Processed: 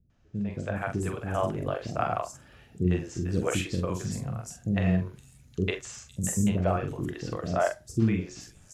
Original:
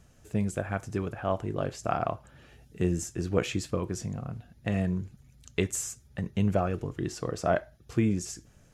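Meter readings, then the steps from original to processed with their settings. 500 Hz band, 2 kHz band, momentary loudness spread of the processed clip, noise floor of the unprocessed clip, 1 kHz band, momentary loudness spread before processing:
+0.5 dB, +2.0 dB, 11 LU, -59 dBFS, +1.5 dB, 9 LU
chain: level rider gain up to 11.5 dB; doubling 44 ms -6 dB; three bands offset in time lows, mids, highs 100/510 ms, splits 400/5600 Hz; trim -8.5 dB

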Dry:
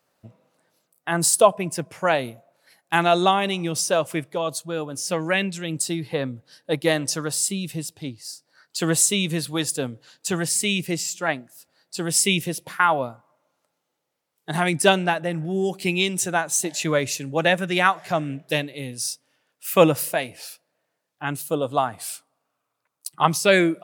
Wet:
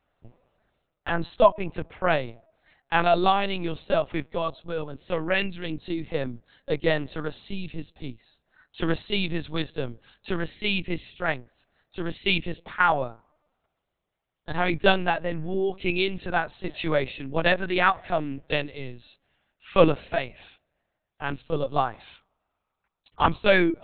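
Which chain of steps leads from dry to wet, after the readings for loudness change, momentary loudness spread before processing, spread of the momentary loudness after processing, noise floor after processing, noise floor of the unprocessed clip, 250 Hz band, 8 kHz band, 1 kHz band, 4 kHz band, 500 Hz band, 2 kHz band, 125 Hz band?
-3.5 dB, 15 LU, 15 LU, -82 dBFS, -78 dBFS, -4.0 dB, under -40 dB, -2.5 dB, -5.0 dB, -2.5 dB, -2.5 dB, -4.0 dB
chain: LPC vocoder at 8 kHz pitch kept; trim -2 dB

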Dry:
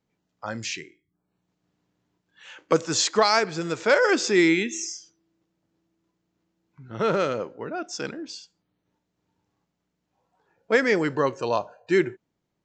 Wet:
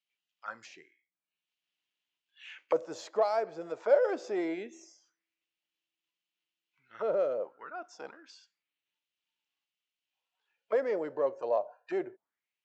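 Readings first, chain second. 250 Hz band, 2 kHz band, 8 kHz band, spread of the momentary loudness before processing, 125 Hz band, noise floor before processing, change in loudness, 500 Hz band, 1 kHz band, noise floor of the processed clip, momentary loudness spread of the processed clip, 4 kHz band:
-14.5 dB, -18.5 dB, under -20 dB, 16 LU, under -20 dB, -79 dBFS, -8.0 dB, -6.0 dB, -10.0 dB, under -85 dBFS, 19 LU, -22.5 dB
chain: single-diode clipper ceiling -10 dBFS; treble shelf 4.7 kHz +11 dB; auto-wah 600–2900 Hz, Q 3.5, down, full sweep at -24 dBFS

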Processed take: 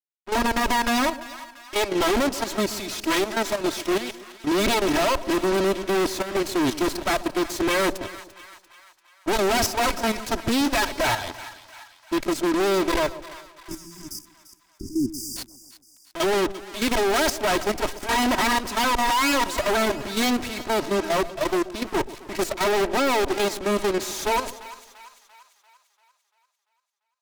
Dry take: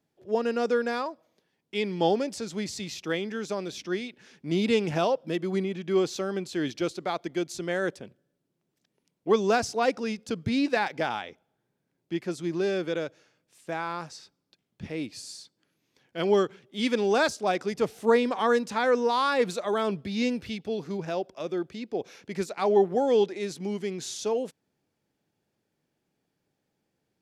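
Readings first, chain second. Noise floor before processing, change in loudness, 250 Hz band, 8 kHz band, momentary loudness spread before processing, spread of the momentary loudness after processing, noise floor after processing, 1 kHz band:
-80 dBFS, +4.5 dB, +4.5 dB, +11.5 dB, 12 LU, 15 LU, -68 dBFS, +6.5 dB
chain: comb filter that takes the minimum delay 3.1 ms; fuzz box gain 42 dB, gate -46 dBFS; level held to a coarse grid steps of 16 dB; saturation -19 dBFS, distortion -14 dB; spectral selection erased 13.31–15.37 s, 400–4700 Hz; two-band feedback delay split 870 Hz, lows 130 ms, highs 343 ms, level -15 dB

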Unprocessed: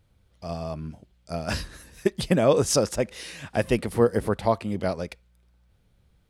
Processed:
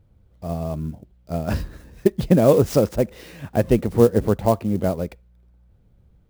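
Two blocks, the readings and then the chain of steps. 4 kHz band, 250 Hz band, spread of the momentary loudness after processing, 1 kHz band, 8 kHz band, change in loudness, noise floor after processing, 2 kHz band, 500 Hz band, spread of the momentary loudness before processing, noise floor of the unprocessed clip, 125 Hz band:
-5.5 dB, +6.5 dB, 15 LU, +1.5 dB, -6.5 dB, +5.0 dB, -58 dBFS, -3.5 dB, +4.5 dB, 16 LU, -65 dBFS, +7.5 dB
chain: tilt shelf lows +7.5 dB, about 1.1 kHz; sampling jitter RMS 0.022 ms

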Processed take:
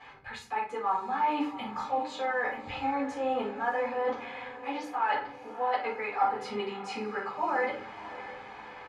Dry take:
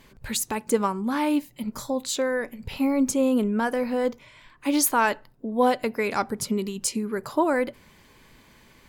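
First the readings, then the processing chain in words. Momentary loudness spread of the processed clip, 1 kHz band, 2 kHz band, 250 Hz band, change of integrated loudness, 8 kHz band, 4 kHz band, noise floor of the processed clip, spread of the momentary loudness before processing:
12 LU, -0.5 dB, -3.0 dB, -13.5 dB, -6.5 dB, under -25 dB, -8.5 dB, -47 dBFS, 8 LU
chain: resonant low shelf 550 Hz -11 dB, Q 1.5; comb 2.4 ms, depth 53%; reverse; compression 6:1, threshold -38 dBFS, peak gain reduction 22.5 dB; reverse; band-pass 110–2300 Hz; on a send: echo that smears into a reverb 635 ms, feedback 55%, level -14 dB; on the sum: simulated room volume 290 m³, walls furnished, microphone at 5.9 m

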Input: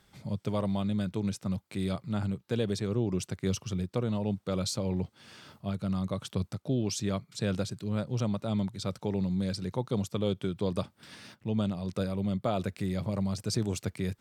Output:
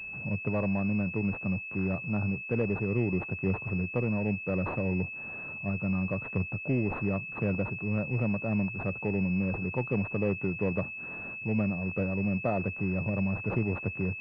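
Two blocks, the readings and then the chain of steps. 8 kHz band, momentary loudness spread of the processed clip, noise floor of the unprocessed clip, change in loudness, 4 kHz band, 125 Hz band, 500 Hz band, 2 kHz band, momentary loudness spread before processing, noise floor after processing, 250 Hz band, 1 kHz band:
under -30 dB, 4 LU, -69 dBFS, +1.5 dB, under -20 dB, +1.0 dB, +1.0 dB, +13.5 dB, 5 LU, -40 dBFS, +1.0 dB, +0.5 dB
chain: companding laws mixed up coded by mu; class-D stage that switches slowly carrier 2.6 kHz

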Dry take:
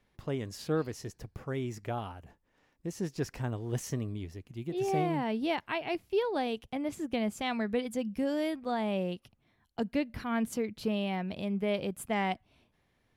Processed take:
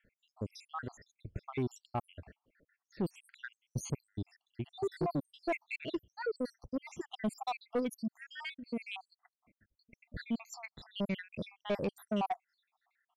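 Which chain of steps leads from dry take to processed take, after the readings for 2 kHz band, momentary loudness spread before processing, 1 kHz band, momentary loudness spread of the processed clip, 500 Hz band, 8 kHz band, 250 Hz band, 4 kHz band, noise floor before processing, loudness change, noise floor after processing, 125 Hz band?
-5.0 dB, 10 LU, -5.5 dB, 12 LU, -6.5 dB, -5.5 dB, -6.5 dB, -6.0 dB, -74 dBFS, -6.0 dB, under -85 dBFS, -5.5 dB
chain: random holes in the spectrogram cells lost 80%; level-controlled noise filter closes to 2.3 kHz, open at -33.5 dBFS; saturation -31 dBFS, distortion -12 dB; trim +4.5 dB

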